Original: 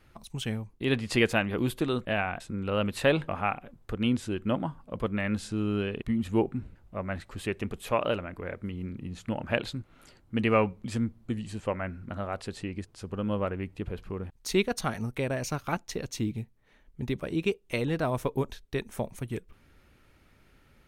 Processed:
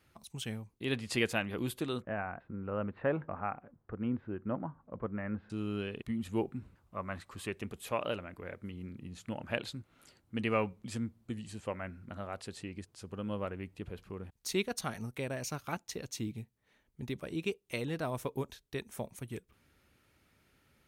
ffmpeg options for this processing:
ffmpeg -i in.wav -filter_complex "[0:a]asettb=1/sr,asplit=3[link_01][link_02][link_03];[link_01]atrim=end=2.024[link_04];[link_02]atrim=start=2.02:end=5.5,asetpts=PTS-STARTPTS,afade=type=in:duration=0.004:curve=qsin,afade=type=out:start_time=3.476:duration=0.004:curve=qsin,lowpass=frequency=1700:width=0.5412,lowpass=frequency=1700:width=1.3066[link_05];[link_03]atrim=start=5.496[link_06];[link_04][link_05]acrossfade=duration=0.004:curve1=hsin:curve2=qsin[link_07];[link_07][link_06]acrossfade=duration=0.004:curve1=qsin:curve2=hsin,asettb=1/sr,asplit=3[link_08][link_09][link_10];[link_08]atrim=end=6.634[link_11];[link_09]atrim=start=6.63:end=7.5,asetpts=PTS-STARTPTS,afade=type=in:duration=0.004:curve=qsin,afade=type=out:start_time=0.866:duration=0.004:curve=qsin,equalizer=frequency=1100:width=3.7:gain=9.5[link_12];[link_10]atrim=start=7.496[link_13];[link_11][link_12]acrossfade=duration=0.004:curve1=hsin:curve2=qsin[link_14];[link_14][link_13]acrossfade=duration=0.004:curve1=qsin:curve2=hsin,highpass=62,highshelf=frequency=3900:gain=6.5,volume=-7.5dB" out.wav

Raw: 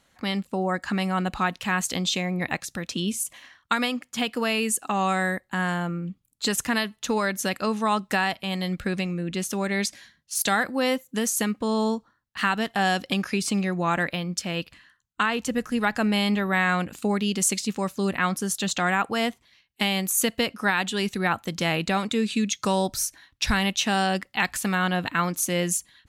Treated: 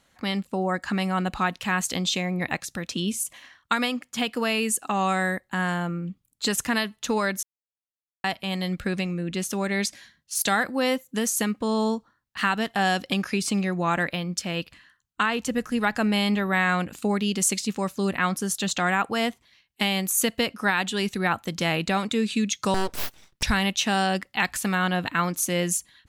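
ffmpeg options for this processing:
ffmpeg -i in.wav -filter_complex "[0:a]asettb=1/sr,asplit=3[link_01][link_02][link_03];[link_01]atrim=end=22.744[link_04];[link_02]atrim=start=22.74:end=23.43,asetpts=PTS-STARTPTS,afade=type=in:duration=0.004:curve=qsin,afade=type=out:start_time=0.686:duration=0.004:curve=qsin,aeval=exprs='abs(val(0))':channel_layout=same[link_05];[link_03]atrim=start=23.426[link_06];[link_04][link_05]acrossfade=duration=0.004:curve1=hsin:curve2=qsin[link_07];[link_07][link_06]acrossfade=duration=0.004:curve1=qsin:curve2=hsin,asplit=3[link_08][link_09][link_10];[link_08]atrim=end=7.43,asetpts=PTS-STARTPTS,afade=type=out:start_time=7.426:duration=0.004:curve=hsin[link_11];[link_09]atrim=start=7.43:end=8.24,asetpts=PTS-STARTPTS,volume=0[link_12];[link_10]atrim=start=8.24,asetpts=PTS-STARTPTS,afade=type=in:duration=0.004:curve=hsin[link_13];[link_11][link_12][link_13]concat=n=3:v=0:a=1" out.wav

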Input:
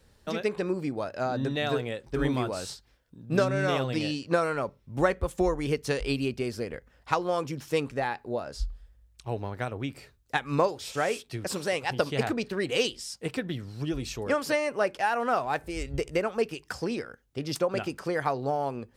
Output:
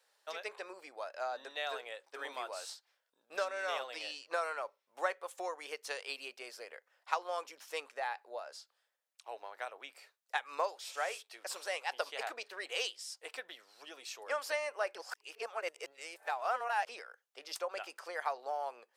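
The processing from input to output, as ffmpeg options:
ffmpeg -i in.wav -filter_complex "[0:a]asplit=3[link_01][link_02][link_03];[link_01]atrim=end=14.952[link_04];[link_02]atrim=start=14.948:end=16.892,asetpts=PTS-STARTPTS,areverse[link_05];[link_03]atrim=start=16.888[link_06];[link_04][link_05]acrossfade=duration=0.004:curve1=hsin:curve2=hsin[link_07];[link_07][link_06]acrossfade=duration=0.004:curve1=hsin:curve2=hsin,highpass=frequency=600:width=0.5412,highpass=frequency=600:width=1.3066,volume=-6.5dB" out.wav

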